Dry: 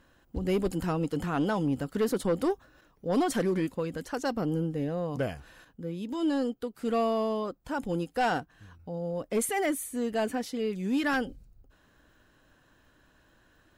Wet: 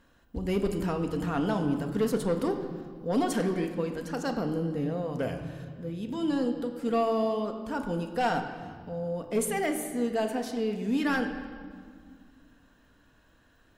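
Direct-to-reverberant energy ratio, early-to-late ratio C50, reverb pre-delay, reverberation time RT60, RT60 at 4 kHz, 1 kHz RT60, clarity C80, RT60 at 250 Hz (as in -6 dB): 4.5 dB, 8.0 dB, 4 ms, 1.9 s, 1.5 s, 1.8 s, 9.0 dB, 3.0 s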